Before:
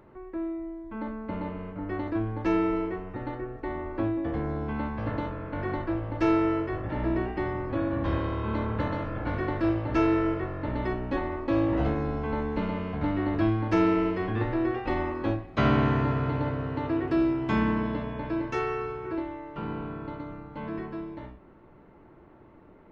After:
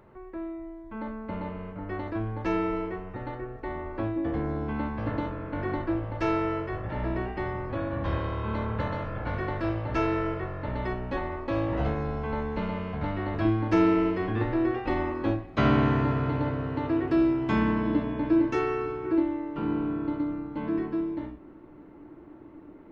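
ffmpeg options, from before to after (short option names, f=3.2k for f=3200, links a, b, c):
-af "asetnsamples=n=441:p=0,asendcmd='4.16 equalizer g 2.5;6.05 equalizer g -8;13.45 equalizer g 2.5;17.86 equalizer g 12.5',equalizer=f=300:t=o:w=0.4:g=-5.5"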